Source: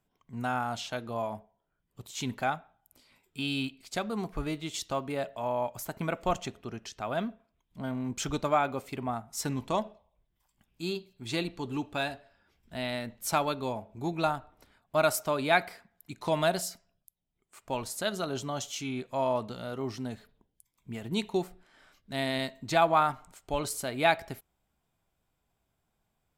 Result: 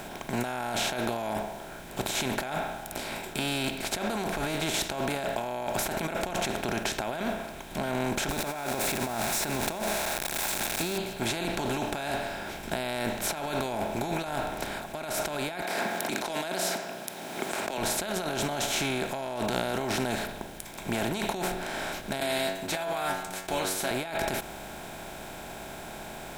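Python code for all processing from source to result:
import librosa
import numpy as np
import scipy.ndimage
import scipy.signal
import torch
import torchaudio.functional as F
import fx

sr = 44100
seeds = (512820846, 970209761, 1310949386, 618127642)

y = fx.chain(x, sr, fx.crossing_spikes(level_db=-32.5),
    fx.notch(hz=3100.0, q=7.8), at=(8.29, 10.98))
y = fx.chain(y, sr, fx.highpass(hz=240.0, slope=24),
    fx.peak_eq(hz=4900.0, db=6.0, octaves=0.9),
    fx.band_squash(depth_pct=100), at=(15.62, 17.78))
y = fx.chain(y, sr, fx.tilt_eq(slope=2.0),
    fx.stiff_resonator(f0_hz=91.0, decay_s=0.39, stiffness=0.002), at=(22.2, 23.91))
y = fx.bin_compress(y, sr, power=0.4)
y = fx.notch(y, sr, hz=1200.0, q=5.8)
y = fx.over_compress(y, sr, threshold_db=-28.0, ratio=-1.0)
y = F.gain(torch.from_numpy(y), -2.5).numpy()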